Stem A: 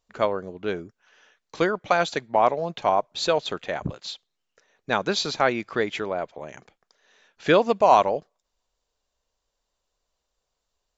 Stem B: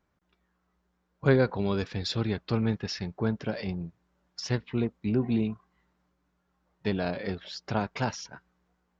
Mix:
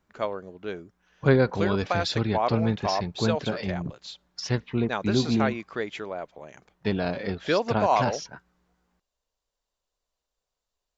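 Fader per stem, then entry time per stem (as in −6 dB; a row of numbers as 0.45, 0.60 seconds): −6.0, +2.5 decibels; 0.00, 0.00 seconds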